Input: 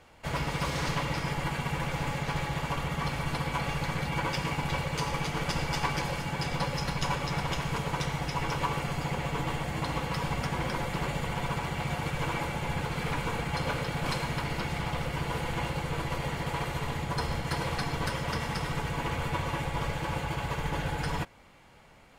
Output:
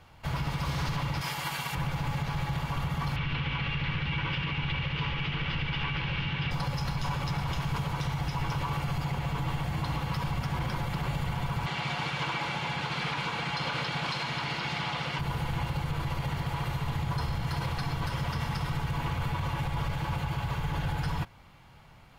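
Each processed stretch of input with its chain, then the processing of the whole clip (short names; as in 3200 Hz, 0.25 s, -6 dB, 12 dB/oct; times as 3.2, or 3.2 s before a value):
1.21–1.75 HPF 580 Hz 6 dB/oct + high shelf 3900 Hz +10.5 dB
3.16–6.51 delta modulation 32 kbps, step -32 dBFS + EQ curve 470 Hz 0 dB, 700 Hz -7 dB, 2900 Hz +9 dB, 4700 Hz -10 dB, 11000 Hz -26 dB
11.66–15.19 BPF 210–4700 Hz + high shelf 2100 Hz +10.5 dB
whole clip: graphic EQ 125/250/500/2000/8000 Hz +5/-5/-8/-5/-9 dB; limiter -26.5 dBFS; gain +4 dB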